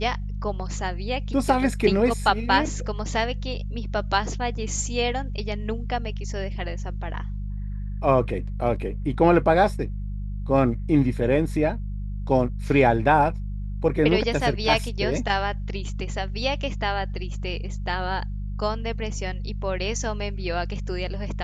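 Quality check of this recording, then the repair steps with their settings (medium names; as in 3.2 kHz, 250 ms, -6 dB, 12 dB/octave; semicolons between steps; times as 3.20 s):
hum 50 Hz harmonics 4 -30 dBFS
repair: de-hum 50 Hz, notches 4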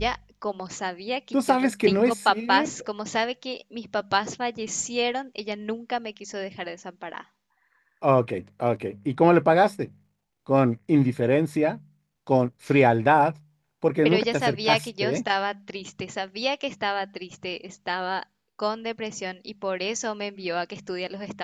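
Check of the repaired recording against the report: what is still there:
nothing left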